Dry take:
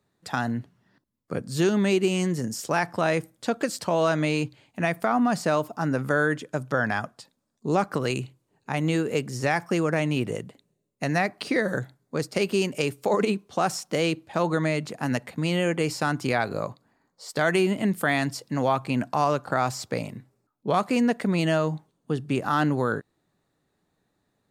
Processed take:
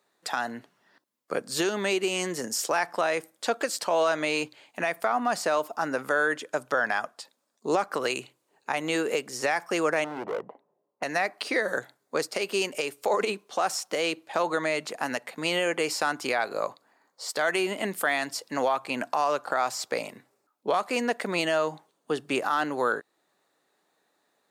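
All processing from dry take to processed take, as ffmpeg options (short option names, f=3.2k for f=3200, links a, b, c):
-filter_complex "[0:a]asettb=1/sr,asplit=3[a][b][c];[a]atrim=end=10.044[d];[b]atrim=start=10.04:end=11.03,asetpts=PTS-STARTPTS,afade=t=in:d=0.004:c=qsin,afade=t=out:st=0.986:d=0.004:c=qsin,lowpass=f=920:t=q:w=2.9,volume=27.5dB,asoftclip=hard,volume=-27.5dB[e];[c]atrim=start=11.026[f];[d][e]acrossfade=d=0.004:c1=hsin:c2=qsin[g];[g][f]acrossfade=d=0.004:c1=qsin:c2=hsin,highpass=480,acontrast=39,alimiter=limit=-14.5dB:level=0:latency=1:release=390"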